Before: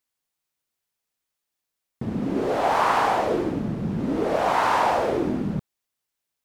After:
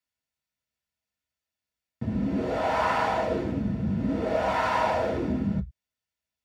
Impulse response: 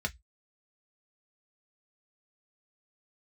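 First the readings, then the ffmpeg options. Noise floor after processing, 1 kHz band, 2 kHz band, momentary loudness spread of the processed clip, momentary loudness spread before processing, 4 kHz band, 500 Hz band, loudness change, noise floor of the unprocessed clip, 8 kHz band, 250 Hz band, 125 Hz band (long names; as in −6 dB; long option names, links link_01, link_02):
below −85 dBFS, −5.5 dB, −3.5 dB, 6 LU, 9 LU, −4.5 dB, −3.5 dB, −3.5 dB, −83 dBFS, −7.5 dB, −1.5 dB, 0.0 dB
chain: -filter_complex "[1:a]atrim=start_sample=2205,afade=type=out:start_time=0.16:duration=0.01,atrim=end_sample=7497[link_01];[0:a][link_01]afir=irnorm=-1:irlink=0,volume=-8dB"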